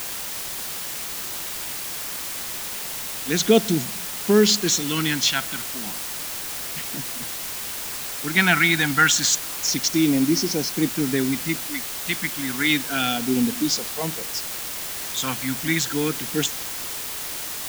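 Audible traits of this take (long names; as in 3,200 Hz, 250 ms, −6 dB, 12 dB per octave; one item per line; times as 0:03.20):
phaser sweep stages 2, 0.31 Hz, lowest notch 410–1,500 Hz
a quantiser's noise floor 6 bits, dither triangular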